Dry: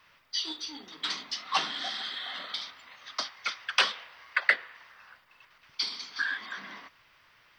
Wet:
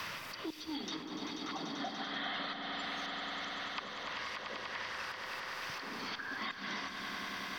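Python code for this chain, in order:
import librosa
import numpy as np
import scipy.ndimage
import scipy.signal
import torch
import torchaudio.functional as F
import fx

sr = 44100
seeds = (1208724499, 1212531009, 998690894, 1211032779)

p1 = fx.bass_treble(x, sr, bass_db=2, treble_db=10)
p2 = fx.env_lowpass_down(p1, sr, base_hz=730.0, full_db=-27.0)
p3 = fx.low_shelf(p2, sr, hz=480.0, db=4.5)
p4 = fx.auto_swell(p3, sr, attack_ms=305.0)
p5 = p4 + fx.echo_swell(p4, sr, ms=97, loudest=5, wet_db=-11.0, dry=0)
p6 = fx.band_squash(p5, sr, depth_pct=100)
y = F.gain(torch.from_numpy(p6), 4.5).numpy()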